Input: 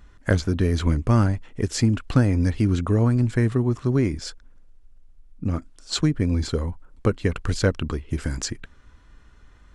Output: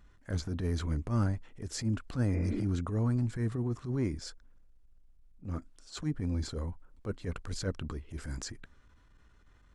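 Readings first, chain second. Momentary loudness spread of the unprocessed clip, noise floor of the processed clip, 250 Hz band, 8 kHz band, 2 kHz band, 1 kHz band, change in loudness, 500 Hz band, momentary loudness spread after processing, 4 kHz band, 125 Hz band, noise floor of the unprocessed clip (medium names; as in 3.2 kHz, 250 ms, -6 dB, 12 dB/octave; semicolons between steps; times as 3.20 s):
10 LU, -61 dBFS, -11.5 dB, -10.5 dB, -14.0 dB, -12.5 dB, -11.5 dB, -13.5 dB, 11 LU, -12.5 dB, -11.0 dB, -52 dBFS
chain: spectral replace 2.36–2.61 s, 200–2800 Hz; dynamic bell 2.8 kHz, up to -5 dB, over -50 dBFS, Q 1.7; transient shaper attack -12 dB, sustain +1 dB; trim -9 dB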